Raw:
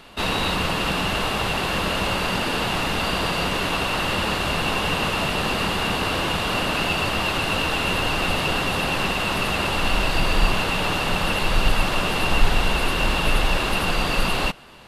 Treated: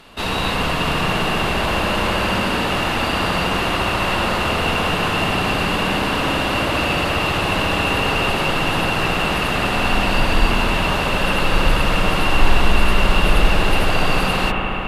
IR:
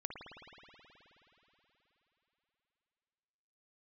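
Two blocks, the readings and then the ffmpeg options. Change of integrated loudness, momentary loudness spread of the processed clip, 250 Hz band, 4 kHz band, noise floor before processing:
+3.5 dB, 2 LU, +5.0 dB, +2.0 dB, -25 dBFS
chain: -filter_complex "[1:a]atrim=start_sample=2205,asetrate=33957,aresample=44100[a];[0:a][a]afir=irnorm=-1:irlink=0,volume=3dB"

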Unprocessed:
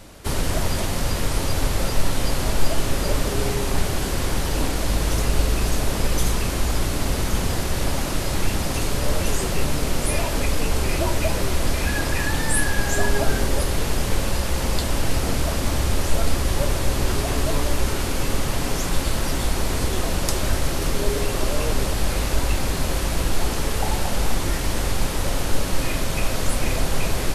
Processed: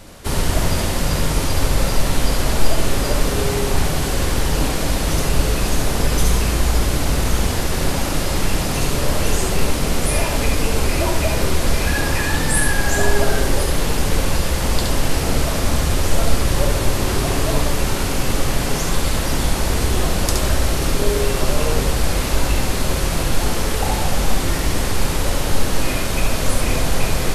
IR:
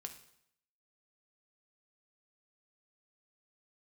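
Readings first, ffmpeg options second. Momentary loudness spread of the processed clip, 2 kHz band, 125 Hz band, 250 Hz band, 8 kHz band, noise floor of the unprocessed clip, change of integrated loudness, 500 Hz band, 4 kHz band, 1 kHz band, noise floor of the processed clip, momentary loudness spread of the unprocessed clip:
2 LU, +4.0 dB, +4.0 dB, +4.0 dB, +4.0 dB, -25 dBFS, +4.0 dB, +4.0 dB, +4.0 dB, +4.0 dB, -21 dBFS, 2 LU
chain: -filter_complex "[0:a]asplit=2[a][b];[1:a]atrim=start_sample=2205,adelay=69[c];[b][c]afir=irnorm=-1:irlink=0,volume=0.5dB[d];[a][d]amix=inputs=2:normalize=0,volume=2.5dB"

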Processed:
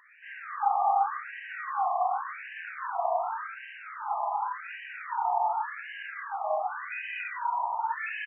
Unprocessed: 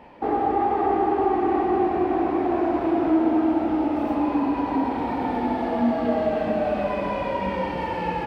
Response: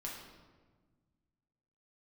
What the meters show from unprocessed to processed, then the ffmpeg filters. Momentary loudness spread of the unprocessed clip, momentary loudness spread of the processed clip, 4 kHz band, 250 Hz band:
5 LU, 12 LU, n/a, under -40 dB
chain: -filter_complex "[0:a]tiltshelf=f=970:g=-4,asplit=2[a][b];[b]adelay=29,volume=-5.5dB[c];[a][c]amix=inputs=2:normalize=0,asplit=2[d][e];[1:a]atrim=start_sample=2205,asetrate=26460,aresample=44100[f];[e][f]afir=irnorm=-1:irlink=0,volume=-1.5dB[g];[d][g]amix=inputs=2:normalize=0,afftfilt=real='re*between(b*sr/1024,860*pow(2200/860,0.5+0.5*sin(2*PI*0.88*pts/sr))/1.41,860*pow(2200/860,0.5+0.5*sin(2*PI*0.88*pts/sr))*1.41)':imag='im*between(b*sr/1024,860*pow(2200/860,0.5+0.5*sin(2*PI*0.88*pts/sr))/1.41,860*pow(2200/860,0.5+0.5*sin(2*PI*0.88*pts/sr))*1.41)':win_size=1024:overlap=0.75,volume=-5dB"

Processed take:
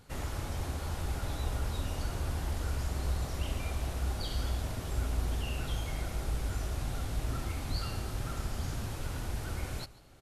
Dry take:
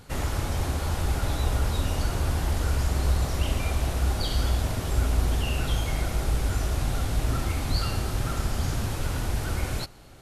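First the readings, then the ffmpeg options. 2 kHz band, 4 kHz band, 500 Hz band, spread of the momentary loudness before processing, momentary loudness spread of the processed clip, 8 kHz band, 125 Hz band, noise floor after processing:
-8.5 dB, -8.5 dB, -8.5 dB, 4 LU, 3 LU, -8.5 dB, -8.5 dB, -41 dBFS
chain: -af "aecho=1:1:142:0.0944,volume=-8.5dB"

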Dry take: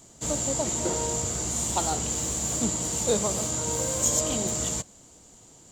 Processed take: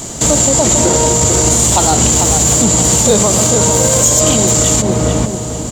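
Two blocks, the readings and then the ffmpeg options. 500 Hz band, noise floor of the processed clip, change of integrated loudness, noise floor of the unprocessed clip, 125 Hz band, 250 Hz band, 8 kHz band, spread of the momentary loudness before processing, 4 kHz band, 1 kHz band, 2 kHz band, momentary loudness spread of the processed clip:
+16.5 dB, -21 dBFS, +16.0 dB, -53 dBFS, +19.5 dB, +17.5 dB, +16.5 dB, 4 LU, +16.5 dB, +16.5 dB, +17.0 dB, 5 LU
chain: -filter_complex "[0:a]asplit=2[a][b];[b]adelay=442,lowpass=f=1.2k:p=1,volume=-7dB,asplit=2[c][d];[d]adelay=442,lowpass=f=1.2k:p=1,volume=0.36,asplit=2[e][f];[f]adelay=442,lowpass=f=1.2k:p=1,volume=0.36,asplit=2[g][h];[h]adelay=442,lowpass=f=1.2k:p=1,volume=0.36[i];[a][c][e][g][i]amix=inputs=5:normalize=0,asplit=2[j][k];[k]acompressor=threshold=-34dB:ratio=6,volume=2.5dB[l];[j][l]amix=inputs=2:normalize=0,asoftclip=type=hard:threshold=-12.5dB,alimiter=level_in=20.5dB:limit=-1dB:release=50:level=0:latency=1,volume=-1dB"

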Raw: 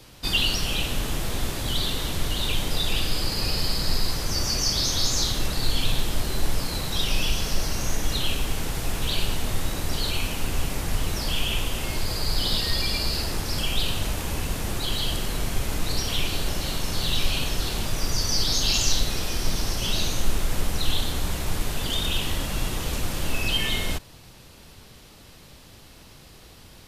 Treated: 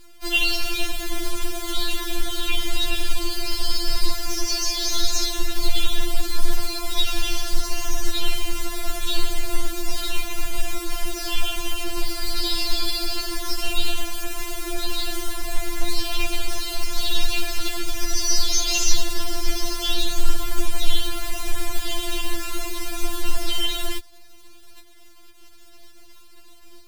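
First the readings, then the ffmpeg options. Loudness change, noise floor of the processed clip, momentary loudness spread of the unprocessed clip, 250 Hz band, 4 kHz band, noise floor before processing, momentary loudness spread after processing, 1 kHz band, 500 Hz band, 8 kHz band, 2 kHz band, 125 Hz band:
0.0 dB, -43 dBFS, 7 LU, -0.5 dB, 0.0 dB, -48 dBFS, 8 LU, +1.0 dB, +0.5 dB, +2.0 dB, +1.5 dB, -7.0 dB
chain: -af "acrusher=bits=7:dc=4:mix=0:aa=0.000001,afftfilt=real='re*4*eq(mod(b,16),0)':imag='im*4*eq(mod(b,16),0)':win_size=2048:overlap=0.75,volume=3dB"

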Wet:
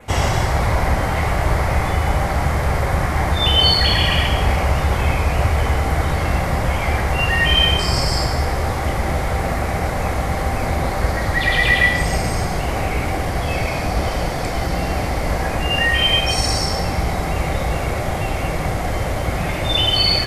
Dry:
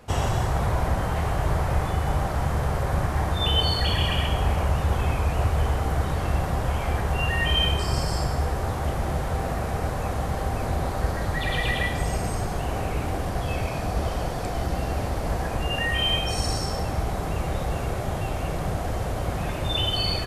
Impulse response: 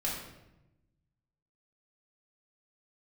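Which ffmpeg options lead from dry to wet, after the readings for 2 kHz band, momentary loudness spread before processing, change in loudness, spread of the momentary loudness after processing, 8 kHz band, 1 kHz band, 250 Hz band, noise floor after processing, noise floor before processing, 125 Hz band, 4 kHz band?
+11.0 dB, 6 LU, +7.0 dB, 8 LU, +8.0 dB, +7.0 dB, +6.0 dB, -23 dBFS, -29 dBFS, +5.0 dB, +9.0 dB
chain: -filter_complex "[0:a]equalizer=f=2.1k:w=5.8:g=9.5,asplit=2[a][b];[1:a]atrim=start_sample=2205,lowshelf=f=350:g=-9[c];[b][c]afir=irnorm=-1:irlink=0,volume=-8dB[d];[a][d]amix=inputs=2:normalize=0,adynamicequalizer=threshold=0.00501:dfrequency=4900:dqfactor=3.2:tfrequency=4900:tqfactor=3.2:attack=5:release=100:ratio=0.375:range=3:mode=boostabove:tftype=bell,volume=4dB"

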